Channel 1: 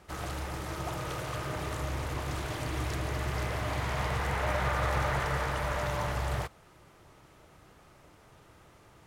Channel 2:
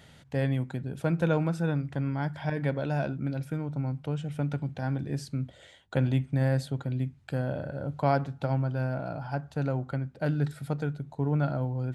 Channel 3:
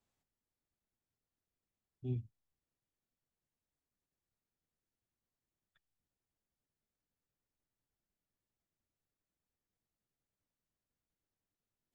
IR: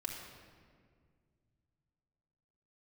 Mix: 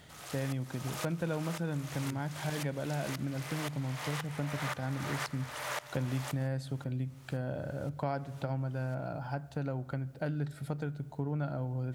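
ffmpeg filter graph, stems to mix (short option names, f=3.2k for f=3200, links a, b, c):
-filter_complex "[0:a]highpass=410,highshelf=f=2.4k:g=12,aeval=exprs='val(0)*pow(10,-21*if(lt(mod(-1.9*n/s,1),2*abs(-1.9)/1000),1-mod(-1.9*n/s,1)/(2*abs(-1.9)/1000),(mod(-1.9*n/s,1)-2*abs(-1.9)/1000)/(1-2*abs(-1.9)/1000))/20)':c=same,volume=-1dB[a];[1:a]volume=-2dB,asplit=2[b][c];[c]volume=-19dB[d];[2:a]acompressor=mode=upward:threshold=-47dB:ratio=2.5,volume=-4dB,asplit=3[e][f][g];[e]atrim=end=3.15,asetpts=PTS-STARTPTS,afade=t=out:st=3.146:d=0.004:c=hsin[h];[f]atrim=start=3.15:end=5.35,asetpts=PTS-STARTPTS,volume=0[i];[g]atrim=start=5.35,asetpts=PTS-STARTPTS,afade=t=in:d=0.004:c=hsin[j];[h][i][j]concat=n=3:v=0:a=1[k];[3:a]atrim=start_sample=2205[l];[d][l]afir=irnorm=-1:irlink=0[m];[a][b][k][m]amix=inputs=4:normalize=0,acompressor=threshold=-33dB:ratio=2.5"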